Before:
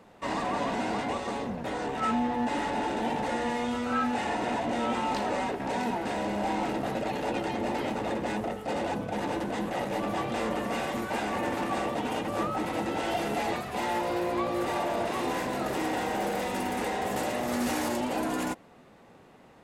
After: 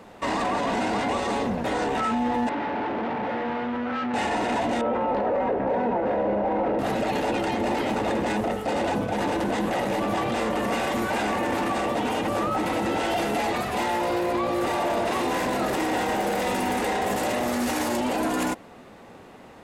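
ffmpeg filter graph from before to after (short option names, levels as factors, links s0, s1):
-filter_complex "[0:a]asettb=1/sr,asplit=3[s0][s1][s2];[s0]atrim=end=2.494[s3];[s1]atrim=start=2.49:end=4.14,asetpts=PTS-STARTPTS,afade=t=in:d=0.004:c=qsin,afade=t=out:st=1.646:d=0.004:c=qsin,aemphasis=mode=reproduction:type=75kf,volume=53.1,asoftclip=hard,volume=0.0188,highpass=100,lowpass=2400[s4];[s2]atrim=start=4.136[s5];[s3][s4]acrossfade=d=0.004:c1=hsin:c2=qsin[s6];[s6][s5]acrossfade=d=0.004:c1=qsin:c2=hsin,asettb=1/sr,asplit=3[s7][s8][s9];[s7]atrim=end=4.814[s10];[s8]atrim=start=4.81:end=6.79,asetpts=PTS-STARTPTS,afade=t=in:d=0.004:c=qsin,afade=t=out:st=1.976:d=0.004:c=qsin,lowpass=1600,equalizer=f=520:w=3.5:g=11.5[s11];[s9]atrim=start=6.786[s12];[s10][s11]acrossfade=d=0.004:c1=hsin:c2=qsin[s13];[s13][s12]acrossfade=d=0.004:c1=qsin:c2=hsin,alimiter=level_in=1.26:limit=0.0631:level=0:latency=1:release=16,volume=0.794,equalizer=f=150:t=o:w=0.31:g=-5.5,volume=2.66"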